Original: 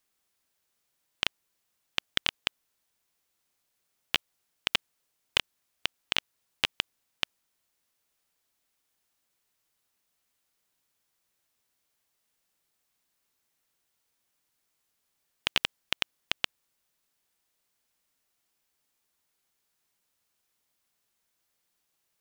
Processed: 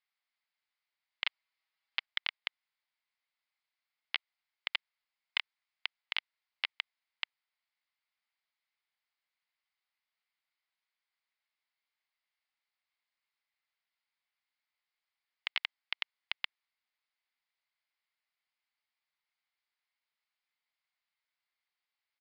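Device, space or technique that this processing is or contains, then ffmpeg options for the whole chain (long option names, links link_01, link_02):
musical greeting card: -filter_complex "[0:a]aresample=11025,aresample=44100,highpass=frequency=740:width=0.5412,highpass=frequency=740:width=1.3066,equalizer=frequency=2100:width_type=o:width=0.26:gain=9,asettb=1/sr,asplit=3[link_01][link_02][link_03];[link_01]atrim=end=1.254[link_04];[link_02]atrim=start=1.25:end=2.06,asetpts=PTS-STARTPTS,afade=type=in:duration=0.004:curve=qsin,afade=type=out:start_time=0.806:duration=0.004:curve=qsin,aecho=1:1:6.2:0.95,atrim=end_sample=35721[link_05];[link_03]atrim=start=2.056[link_06];[link_04][link_05]acrossfade=duration=0.004:curve1=hsin:curve2=qsin[link_07];[link_07][link_06]acrossfade=duration=0.004:curve1=qsin:curve2=hsin,volume=-8.5dB"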